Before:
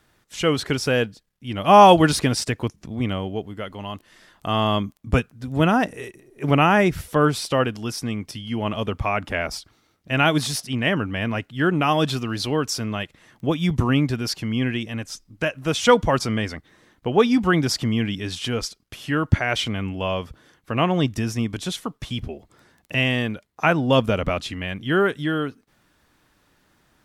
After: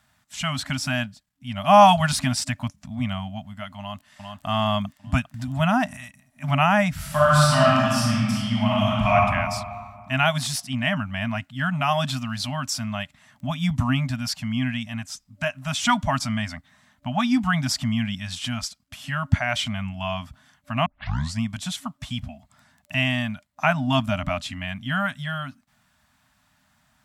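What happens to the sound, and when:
3.79–4.46 echo throw 0.4 s, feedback 40%, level -4 dB
5.34–5.97 upward compressor, threshold -21 dBFS
6.96–9.15 reverb throw, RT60 1.9 s, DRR -7 dB
20.86 tape start 0.56 s
whole clip: HPF 49 Hz; FFT band-reject 270–590 Hz; bell 7600 Hz +4.5 dB 0.22 oct; gain -1.5 dB

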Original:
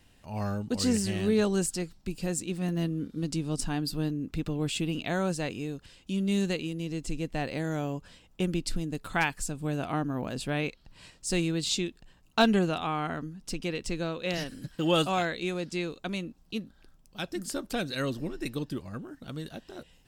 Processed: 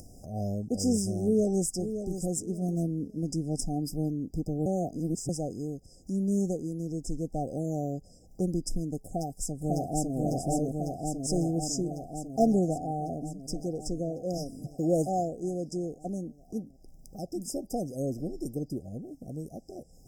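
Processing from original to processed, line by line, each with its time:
1.21–1.68 echo throw 0.57 s, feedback 25%, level -9.5 dB
4.66–5.29 reverse
9.06–10.16 echo throw 0.55 s, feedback 75%, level -0.5 dB
whole clip: FFT band-reject 790–4900 Hz; dynamic EQ 950 Hz, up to +3 dB, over -51 dBFS, Q 2.7; upward compressor, threshold -38 dBFS

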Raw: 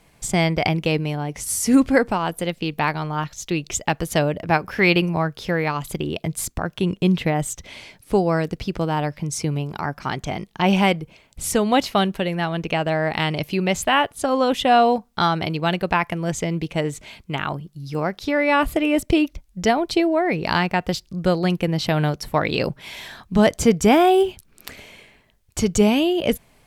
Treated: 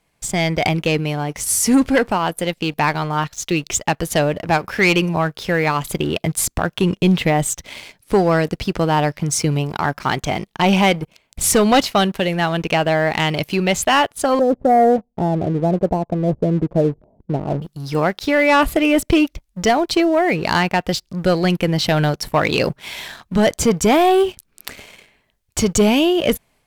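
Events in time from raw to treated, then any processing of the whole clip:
11.02–11.81 sample leveller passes 1
14.39–17.62 steep low-pass 690 Hz
whole clip: low shelf 390 Hz -3.5 dB; sample leveller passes 2; AGC; gain -5.5 dB

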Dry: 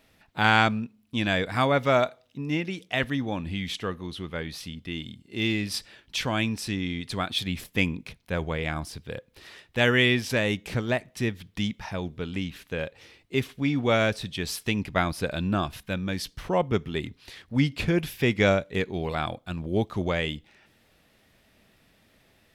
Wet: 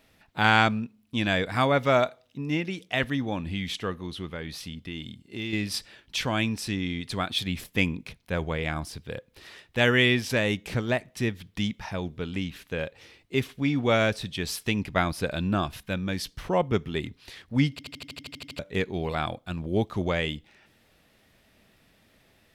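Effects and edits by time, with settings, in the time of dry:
4.28–5.53 compressor 3:1, threshold -31 dBFS
17.71 stutter in place 0.08 s, 11 plays

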